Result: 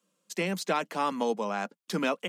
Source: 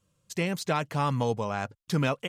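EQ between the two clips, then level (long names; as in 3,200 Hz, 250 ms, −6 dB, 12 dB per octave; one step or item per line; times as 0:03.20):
Butterworth high-pass 180 Hz 72 dB per octave
0.0 dB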